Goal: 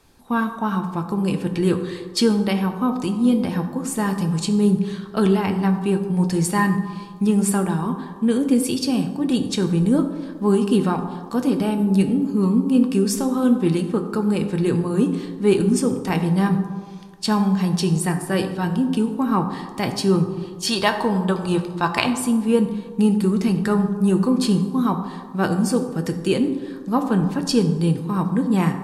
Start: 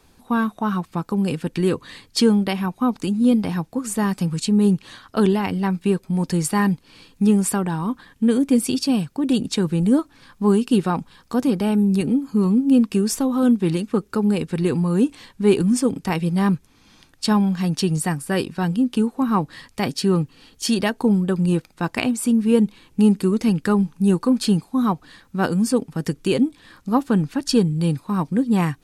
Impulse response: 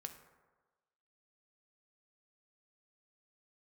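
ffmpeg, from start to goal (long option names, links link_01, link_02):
-filter_complex "[0:a]asettb=1/sr,asplit=3[link_01][link_02][link_03];[link_01]atrim=end=20.674[link_04];[link_02]atrim=start=20.67:end=22.07,asetpts=PTS-STARTPTS,afade=type=in:duration=0.004:curve=qsin,afade=type=out:start_time=1.396:duration=0.004:curve=qsin,equalizer=frequency=250:width_type=o:width=1:gain=-5,equalizer=frequency=1000:width_type=o:width=1:gain=9,equalizer=frequency=4000:width_type=o:width=1:gain=8[link_05];[link_03]atrim=start=22.066[link_06];[link_04][link_05]acrossfade=duration=0.004:curve1=hsin:curve2=qsin[link_07];[link_07][link_06]acrossfade=duration=0.004:curve1=qsin:curve2=hsin[link_08];[1:a]atrim=start_sample=2205,asetrate=31752,aresample=44100[link_09];[link_08][link_09]afir=irnorm=-1:irlink=0,volume=2.5dB"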